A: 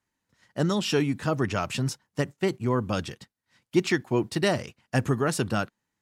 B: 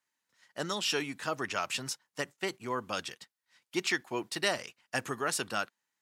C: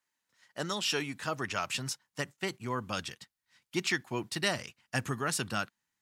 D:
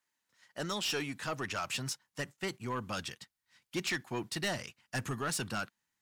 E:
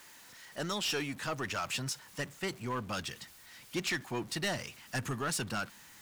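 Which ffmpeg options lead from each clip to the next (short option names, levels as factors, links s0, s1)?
-af "highpass=f=1200:p=1"
-af "asubboost=boost=4:cutoff=210"
-af "asoftclip=type=tanh:threshold=0.0422"
-af "aeval=exprs='val(0)+0.5*0.00376*sgn(val(0))':c=same"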